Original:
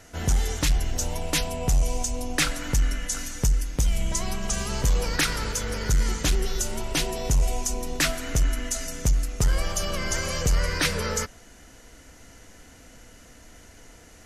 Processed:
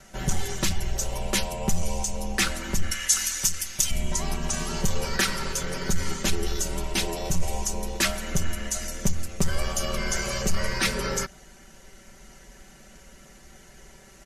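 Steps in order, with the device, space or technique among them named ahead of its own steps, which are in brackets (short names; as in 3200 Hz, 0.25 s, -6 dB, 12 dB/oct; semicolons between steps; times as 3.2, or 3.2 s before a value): 2.91–3.91 tilt shelf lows -10 dB, about 910 Hz; ring-modulated robot voice (ring modulator 40 Hz; comb 5.2 ms, depth 92%)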